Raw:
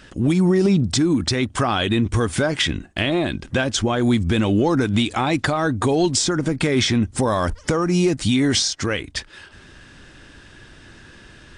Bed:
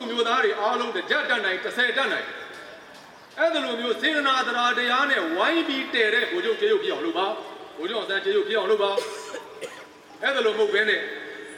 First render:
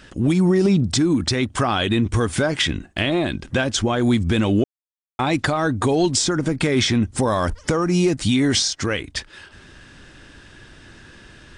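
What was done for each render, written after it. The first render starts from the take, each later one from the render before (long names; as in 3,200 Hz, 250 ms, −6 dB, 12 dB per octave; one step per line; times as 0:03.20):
0:04.64–0:05.19: silence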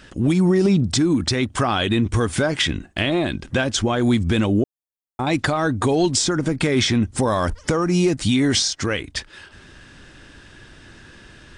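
0:04.46–0:05.27: parametric band 2,700 Hz −14 dB 1.9 octaves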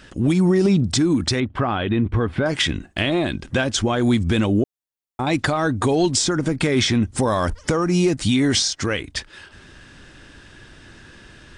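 0:01.40–0:02.46: high-frequency loss of the air 400 metres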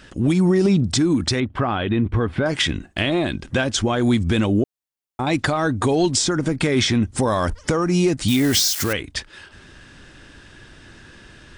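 0:08.28–0:08.93: spike at every zero crossing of −18 dBFS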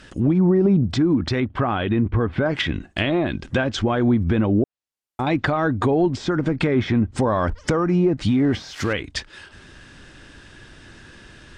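treble cut that deepens with the level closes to 1,100 Hz, closed at −13.5 dBFS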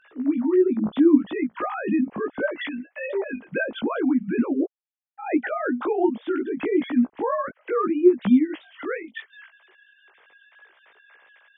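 three sine waves on the formant tracks
chorus effect 0.72 Hz, delay 16 ms, depth 3.1 ms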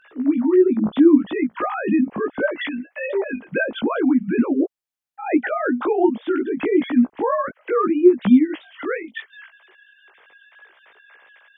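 level +4 dB
brickwall limiter −3 dBFS, peak gain reduction 2.5 dB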